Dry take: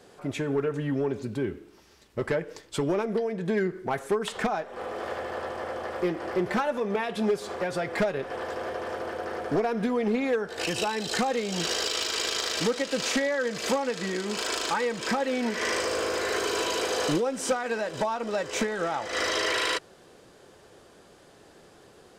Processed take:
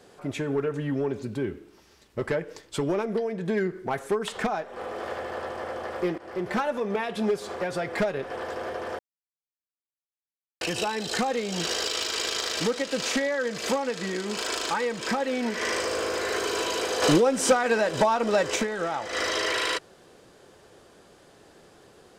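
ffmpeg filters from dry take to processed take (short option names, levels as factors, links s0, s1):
-filter_complex "[0:a]asettb=1/sr,asplit=3[s0][s1][s2];[s0]atrim=end=17.024[s3];[s1]atrim=start=17.02:end=18.56,asetpts=PTS-STARTPTS,afade=t=in:d=0.004:c=qsin,afade=t=out:st=1.536:d=0.004:c=qsin,acontrast=60[s4];[s2]atrim=start=18.556[s5];[s3][s4]acrossfade=d=0.004:c1=hsin:c2=qsin[s6];[s6][s5]acrossfade=d=0.004:c1=qsin:c2=hsin,asplit=4[s7][s8][s9][s10];[s7]atrim=end=6.18,asetpts=PTS-STARTPTS,afade=t=out:st=6.176:d=0.004:c=hsin:silence=0.199526[s11];[s8]atrim=start=6.18:end=8.99,asetpts=PTS-STARTPTS,afade=t=in:d=0.4:silence=0.199526,afade=t=out:st=2.806:d=0.004:c=hsin[s12];[s9]atrim=start=8.99:end=10.61,asetpts=PTS-STARTPTS,volume=0[s13];[s10]atrim=start=10.61,asetpts=PTS-STARTPTS,afade=t=in:d=0.004:c=hsin[s14];[s11][s12][s13][s14]concat=n=4:v=0:a=1"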